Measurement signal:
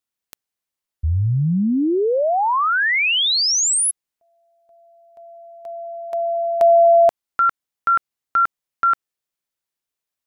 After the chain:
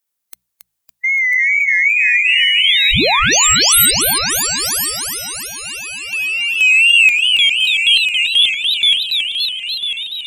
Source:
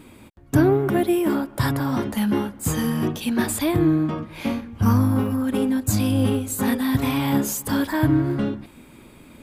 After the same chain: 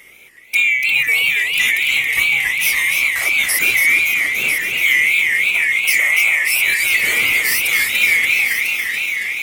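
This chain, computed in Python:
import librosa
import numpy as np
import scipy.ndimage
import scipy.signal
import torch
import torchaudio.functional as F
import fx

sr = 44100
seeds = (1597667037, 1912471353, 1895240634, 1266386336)

p1 = fx.band_swap(x, sr, width_hz=2000)
p2 = fx.high_shelf(p1, sr, hz=8600.0, db=10.5)
p3 = fx.hum_notches(p2, sr, base_hz=60, count=3)
p4 = fx.rider(p3, sr, range_db=10, speed_s=2.0)
p5 = p3 + (p4 * librosa.db_to_amplitude(-2.0))
p6 = 10.0 ** (-3.5 / 20.0) * np.tanh(p5 / 10.0 ** (-3.5 / 20.0))
p7 = fx.wow_flutter(p6, sr, seeds[0], rate_hz=2.6, depth_cents=91.0)
p8 = p7 + fx.echo_single(p7, sr, ms=997, db=-8.5, dry=0)
p9 = fx.echo_warbled(p8, sr, ms=283, feedback_pct=71, rate_hz=2.8, cents=218, wet_db=-5.0)
y = p9 * librosa.db_to_amplitude(-2.5)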